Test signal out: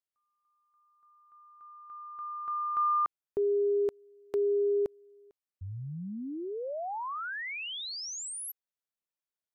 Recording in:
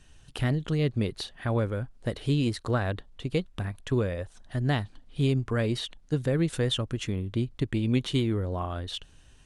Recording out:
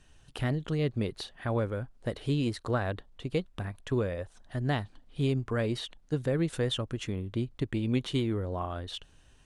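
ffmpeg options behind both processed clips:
ffmpeg -i in.wav -af "equalizer=frequency=730:width_type=o:width=2.8:gain=3.5,volume=-4.5dB" out.wav

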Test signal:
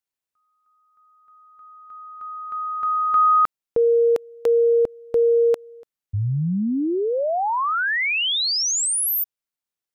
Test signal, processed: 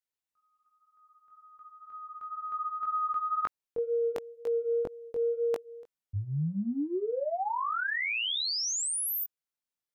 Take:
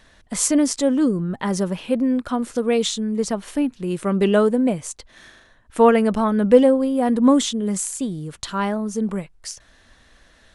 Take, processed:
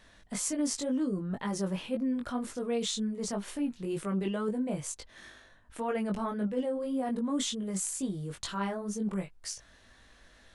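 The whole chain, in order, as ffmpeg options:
ffmpeg -i in.wav -af "areverse,acompressor=threshold=-25dB:ratio=6:attack=7.7:release=97:knee=6:detection=peak,areverse,flanger=delay=19:depth=2.4:speed=2,volume=-2dB" out.wav

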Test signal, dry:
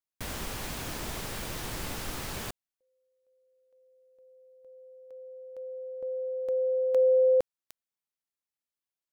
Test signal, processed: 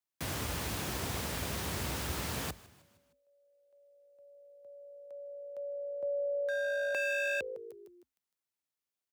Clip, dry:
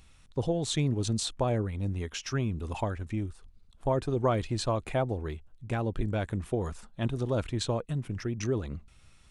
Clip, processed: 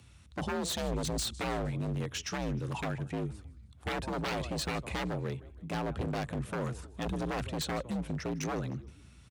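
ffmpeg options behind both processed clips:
ffmpeg -i in.wav -filter_complex "[0:a]asplit=5[link_01][link_02][link_03][link_04][link_05];[link_02]adelay=155,afreqshift=-54,volume=-20.5dB[link_06];[link_03]adelay=310,afreqshift=-108,volume=-26.3dB[link_07];[link_04]adelay=465,afreqshift=-162,volume=-32.2dB[link_08];[link_05]adelay=620,afreqshift=-216,volume=-38dB[link_09];[link_01][link_06][link_07][link_08][link_09]amix=inputs=5:normalize=0,aeval=exprs='0.0376*(abs(mod(val(0)/0.0376+3,4)-2)-1)':channel_layout=same,afreqshift=53" out.wav

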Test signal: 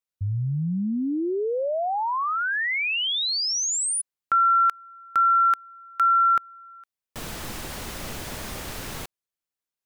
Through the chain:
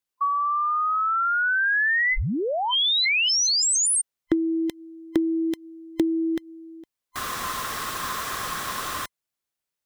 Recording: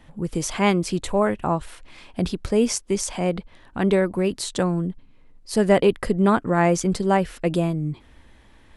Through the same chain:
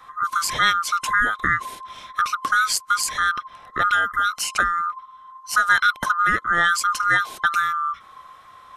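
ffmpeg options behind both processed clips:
ffmpeg -i in.wav -filter_complex "[0:a]afftfilt=real='real(if(lt(b,960),b+48*(1-2*mod(floor(b/48),2)),b),0)':imag='imag(if(lt(b,960),b+48*(1-2*mod(floor(b/48),2)),b),0)':win_size=2048:overlap=0.75,acrossover=split=1800[link_01][link_02];[link_01]acompressor=threshold=-29dB:ratio=6:attack=78:release=325:knee=1:detection=peak[link_03];[link_03][link_02]amix=inputs=2:normalize=0,volume=4dB" out.wav

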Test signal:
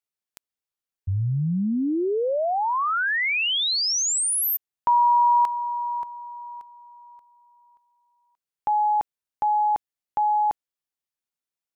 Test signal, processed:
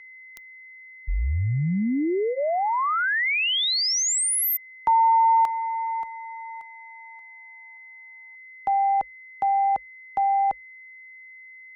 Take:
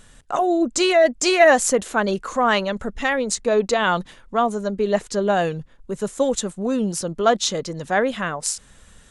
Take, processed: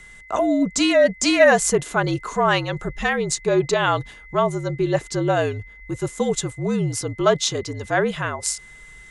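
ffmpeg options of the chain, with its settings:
ffmpeg -i in.wav -af "aeval=exprs='val(0)+0.00708*sin(2*PI*2100*n/s)':channel_layout=same,afreqshift=-53,bandreject=frequency=520:width=13" out.wav

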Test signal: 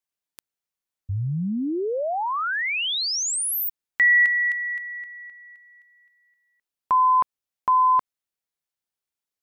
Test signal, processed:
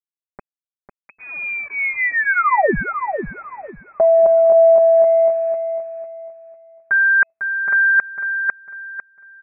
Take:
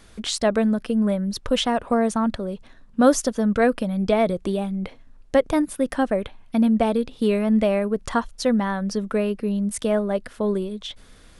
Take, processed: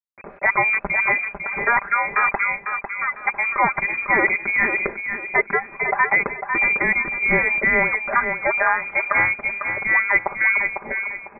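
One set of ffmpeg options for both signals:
ffmpeg -i in.wav -filter_complex "[0:a]agate=range=-12dB:threshold=-43dB:ratio=16:release=91:detection=rms,aderivative,aecho=1:1:5:0.95,areverse,acompressor=threshold=-41dB:ratio=10:attack=37:release=842:knee=6:detection=peak,areverse,acrusher=bits=10:mix=0:aa=0.000001,crystalizer=i=4.5:c=0,asplit=2[link_01][link_02];[link_02]aecho=0:1:500|1000|1500|2000:0.422|0.122|0.0355|0.0103[link_03];[link_01][link_03]amix=inputs=2:normalize=0,lowpass=frequency=2200:width_type=q:width=0.5098,lowpass=frequency=2200:width_type=q:width=0.6013,lowpass=frequency=2200:width_type=q:width=0.9,lowpass=frequency=2200:width_type=q:width=2.563,afreqshift=-2600,alimiter=level_in=31.5dB:limit=-1dB:release=50:level=0:latency=1,volume=-5.5dB" out.wav

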